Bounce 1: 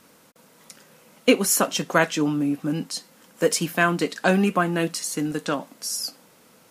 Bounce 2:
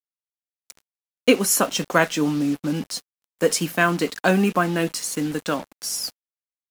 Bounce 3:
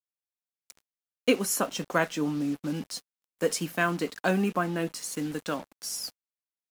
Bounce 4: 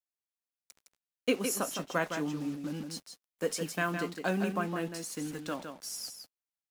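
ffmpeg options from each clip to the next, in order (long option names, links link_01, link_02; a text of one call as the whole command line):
ffmpeg -i in.wav -af "acrusher=bits=5:mix=0:aa=0.5,volume=1dB" out.wav
ffmpeg -i in.wav -af "adynamicequalizer=threshold=0.02:dfrequency=1800:dqfactor=0.7:tfrequency=1800:tqfactor=0.7:attack=5:release=100:ratio=0.375:range=2.5:mode=cutabove:tftype=highshelf,volume=-7dB" out.wav
ffmpeg -i in.wav -af "aecho=1:1:161:0.447,volume=-5.5dB" out.wav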